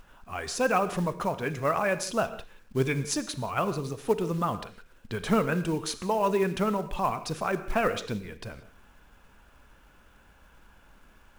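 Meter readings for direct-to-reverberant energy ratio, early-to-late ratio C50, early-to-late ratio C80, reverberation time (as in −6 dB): 12.0 dB, 13.0 dB, 14.5 dB, non-exponential decay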